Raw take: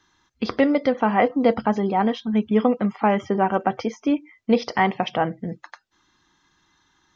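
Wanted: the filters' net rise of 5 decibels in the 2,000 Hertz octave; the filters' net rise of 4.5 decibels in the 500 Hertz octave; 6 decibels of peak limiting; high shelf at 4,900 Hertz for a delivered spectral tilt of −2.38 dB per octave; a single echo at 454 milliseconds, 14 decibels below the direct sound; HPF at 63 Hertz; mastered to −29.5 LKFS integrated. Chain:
high-pass filter 63 Hz
parametric band 500 Hz +5 dB
parametric band 2,000 Hz +6.5 dB
high-shelf EQ 4,900 Hz −7.5 dB
brickwall limiter −7.5 dBFS
single-tap delay 454 ms −14 dB
level −8.5 dB

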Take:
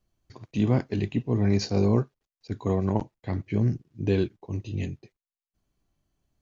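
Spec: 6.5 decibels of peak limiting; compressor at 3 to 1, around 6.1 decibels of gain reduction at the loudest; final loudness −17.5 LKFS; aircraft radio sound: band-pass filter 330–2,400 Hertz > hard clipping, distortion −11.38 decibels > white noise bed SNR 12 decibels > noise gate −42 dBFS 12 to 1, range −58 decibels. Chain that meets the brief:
downward compressor 3 to 1, threshold −26 dBFS
brickwall limiter −21 dBFS
band-pass filter 330–2,400 Hz
hard clipping −34 dBFS
white noise bed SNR 12 dB
noise gate −42 dBFS 12 to 1, range −58 dB
level +24.5 dB

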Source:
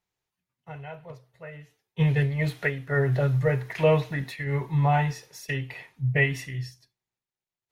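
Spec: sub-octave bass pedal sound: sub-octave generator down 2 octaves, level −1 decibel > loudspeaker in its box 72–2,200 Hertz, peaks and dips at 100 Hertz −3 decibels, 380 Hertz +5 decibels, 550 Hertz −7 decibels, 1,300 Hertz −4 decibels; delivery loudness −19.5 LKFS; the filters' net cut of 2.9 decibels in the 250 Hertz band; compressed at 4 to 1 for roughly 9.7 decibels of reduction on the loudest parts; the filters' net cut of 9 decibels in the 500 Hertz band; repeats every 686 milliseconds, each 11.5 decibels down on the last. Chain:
parametric band 250 Hz −6 dB
parametric band 500 Hz −8 dB
downward compressor 4 to 1, threshold −32 dBFS
repeating echo 686 ms, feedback 27%, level −11.5 dB
sub-octave generator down 2 octaves, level −1 dB
loudspeaker in its box 72–2,200 Hz, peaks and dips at 100 Hz −3 dB, 380 Hz +5 dB, 550 Hz −7 dB, 1,300 Hz −4 dB
level +17 dB

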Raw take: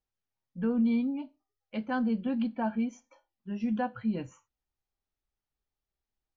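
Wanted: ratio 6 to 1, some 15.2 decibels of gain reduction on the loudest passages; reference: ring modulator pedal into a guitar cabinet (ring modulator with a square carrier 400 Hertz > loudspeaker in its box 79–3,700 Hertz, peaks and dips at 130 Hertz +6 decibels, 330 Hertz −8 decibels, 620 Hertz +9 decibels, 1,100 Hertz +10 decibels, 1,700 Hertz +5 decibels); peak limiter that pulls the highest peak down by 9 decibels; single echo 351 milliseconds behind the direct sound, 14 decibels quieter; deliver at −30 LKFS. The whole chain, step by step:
downward compressor 6 to 1, threshold −41 dBFS
brickwall limiter −40 dBFS
single-tap delay 351 ms −14 dB
ring modulator with a square carrier 400 Hz
loudspeaker in its box 79–3,700 Hz, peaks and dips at 130 Hz +6 dB, 330 Hz −8 dB, 620 Hz +9 dB, 1,100 Hz +10 dB, 1,700 Hz +5 dB
level +12 dB

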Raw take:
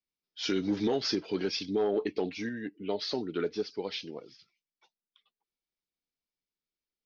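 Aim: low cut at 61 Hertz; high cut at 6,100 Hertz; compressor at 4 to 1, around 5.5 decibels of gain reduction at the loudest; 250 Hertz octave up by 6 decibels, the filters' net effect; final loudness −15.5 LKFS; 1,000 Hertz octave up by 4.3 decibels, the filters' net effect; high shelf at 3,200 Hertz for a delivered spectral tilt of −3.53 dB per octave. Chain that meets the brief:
high-pass filter 61 Hz
low-pass filter 6,100 Hz
parametric band 250 Hz +7.5 dB
parametric band 1,000 Hz +5 dB
high-shelf EQ 3,200 Hz +5 dB
downward compressor 4 to 1, threshold −26 dBFS
level +16 dB

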